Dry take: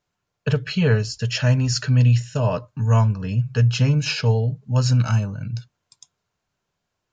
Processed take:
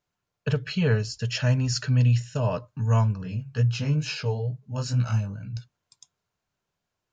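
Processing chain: 3.23–5.57 chorus 2.2 Hz, delay 15.5 ms, depth 5.6 ms; gain -4.5 dB

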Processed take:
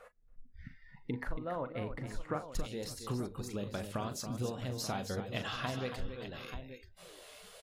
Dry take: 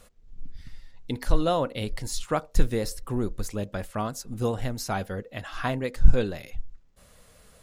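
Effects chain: compressor 12:1, threshold -37 dBFS, peak gain reduction 30.5 dB; tone controls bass 0 dB, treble -10 dB; notches 50/100 Hz; tapped delay 40/278/561/884 ms -10.5/-9/-18.5/-11 dB; spectral noise reduction 19 dB; resonant high shelf 2500 Hz -8.5 dB, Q 1.5, from 2.52 s +6.5 dB; gain +3.5 dB

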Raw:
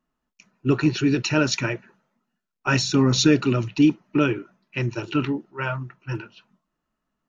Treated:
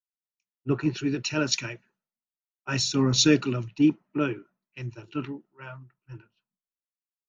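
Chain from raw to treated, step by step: three-band expander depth 100%; gain -7.5 dB

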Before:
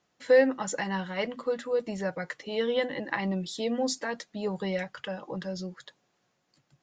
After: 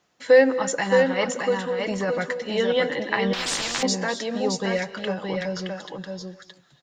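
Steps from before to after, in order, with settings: low shelf 390 Hz -3 dB; 1.67–2.26 negative-ratio compressor -31 dBFS; echo 0.62 s -4.5 dB; on a send at -14.5 dB: reverb, pre-delay 3 ms; 3.33–3.83 on the sum: spectral compressor 10:1; gain +6.5 dB

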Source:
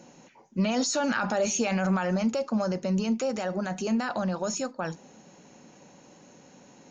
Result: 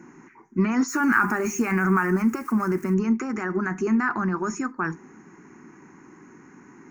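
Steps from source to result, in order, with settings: 0.88–2.94 switching spikes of -33 dBFS; EQ curve 200 Hz 0 dB, 380 Hz +8 dB, 550 Hz -20 dB, 1100 Hz +7 dB, 2100 Hz +5 dB, 3500 Hz -26 dB, 5900 Hz -9 dB, 9800 Hz -7 dB; gain +3.5 dB

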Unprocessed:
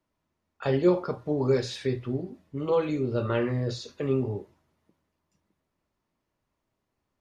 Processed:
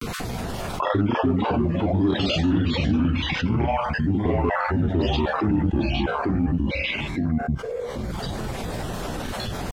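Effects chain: random spectral dropouts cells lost 33%; echoes that change speed 0.139 s, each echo -2 st, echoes 2; in parallel at -4.5 dB: hard clip -23 dBFS, distortion -11 dB; on the sum: speed mistake 45 rpm record played at 33 rpm; upward compressor, threshold -33 dBFS; grains, spray 19 ms, pitch spread up and down by 0 st; fast leveller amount 70%; gain -1.5 dB

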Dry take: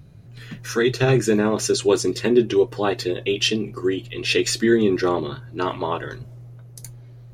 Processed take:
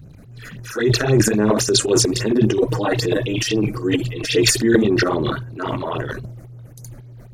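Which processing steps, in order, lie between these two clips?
2.68–4.51 comb 6.4 ms, depth 88%; phaser stages 8, 3.7 Hz, lowest notch 110–4200 Hz; transient shaper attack -3 dB, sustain +12 dB; gain +2 dB

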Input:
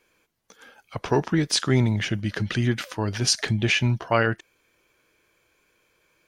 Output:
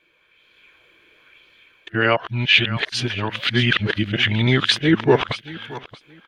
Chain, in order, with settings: whole clip reversed; EQ curve 830 Hz 0 dB, 3400 Hz +11 dB, 5500 Hz -9 dB; AGC gain up to 8 dB; on a send: feedback echo 0.625 s, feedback 19%, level -16 dB; on the sum: LFO bell 1 Hz 300–4500 Hz +7 dB; gain -2.5 dB

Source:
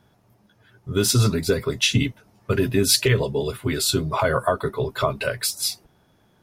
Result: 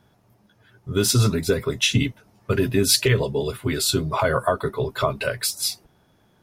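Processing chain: 1.25–1.91 notch 4600 Hz, Q 9

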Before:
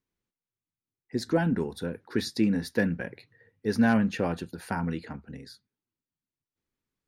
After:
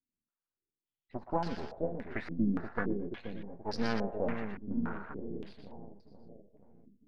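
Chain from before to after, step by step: half-wave rectifier; on a send: split-band echo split 670 Hz, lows 0.479 s, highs 0.121 s, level -5 dB; on the sum: stepped low-pass 3.5 Hz 250–4900 Hz; gain -7.5 dB

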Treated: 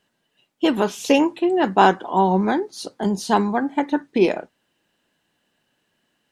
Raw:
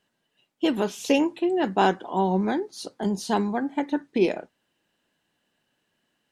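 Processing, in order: dynamic EQ 1100 Hz, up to +5 dB, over -36 dBFS, Q 1.3; gain +4 dB

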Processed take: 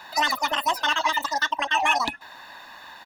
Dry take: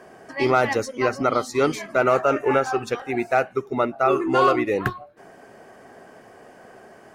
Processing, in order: comb 2.6 ms, depth 68%; in parallel at +2.5 dB: compressor, threshold -28 dBFS, peak gain reduction 17 dB; on the sum: speed mistake 33 rpm record played at 78 rpm; gain -6.5 dB

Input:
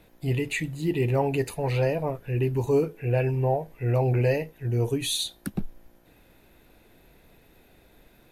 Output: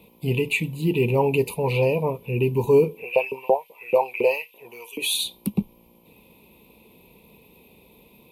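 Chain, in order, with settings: HPF 55 Hz; high shelf 4300 Hz +11 dB; 3.01–5.13 LFO high-pass saw up 7.3 Hz -> 1.8 Hz 420–3200 Hz; EQ curve 120 Hz 0 dB, 210 Hz +10 dB, 300 Hz 0 dB, 460 Hz +8 dB, 700 Hz -4 dB, 1000 Hz +9 dB, 1600 Hz -28 dB, 2400 Hz +7 dB, 6300 Hz -12 dB, 12000 Hz -2 dB

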